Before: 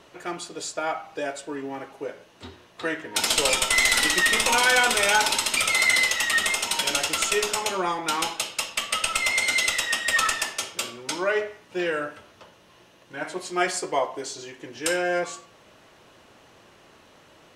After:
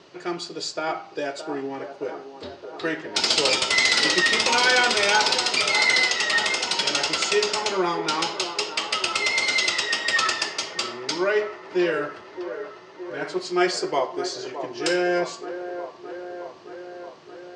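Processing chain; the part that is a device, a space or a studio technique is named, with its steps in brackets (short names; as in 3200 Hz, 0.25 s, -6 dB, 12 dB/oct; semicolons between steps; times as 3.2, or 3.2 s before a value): car door speaker (speaker cabinet 95–6900 Hz, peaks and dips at 160 Hz +5 dB, 370 Hz +7 dB, 4700 Hz +9 dB); band-limited delay 0.619 s, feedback 70%, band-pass 660 Hz, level -9 dB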